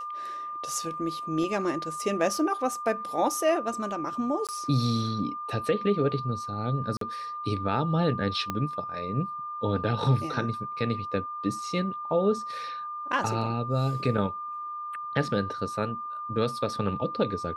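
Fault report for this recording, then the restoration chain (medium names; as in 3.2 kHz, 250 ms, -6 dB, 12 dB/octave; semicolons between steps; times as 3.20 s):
whine 1.2 kHz -33 dBFS
4.47–4.49 s: dropout 17 ms
6.97–7.01 s: dropout 43 ms
8.50 s: pop -15 dBFS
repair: de-click; band-stop 1.2 kHz, Q 30; interpolate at 4.47 s, 17 ms; interpolate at 6.97 s, 43 ms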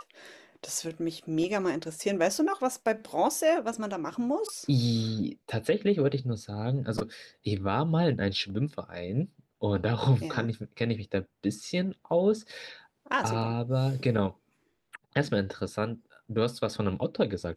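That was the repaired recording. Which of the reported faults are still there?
8.50 s: pop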